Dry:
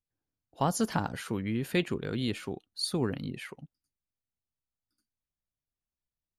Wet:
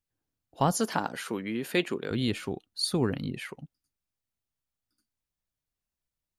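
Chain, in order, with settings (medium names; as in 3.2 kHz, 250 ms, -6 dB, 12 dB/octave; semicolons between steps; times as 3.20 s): 0.77–2.11 s: high-pass 260 Hz 12 dB/octave; trim +3 dB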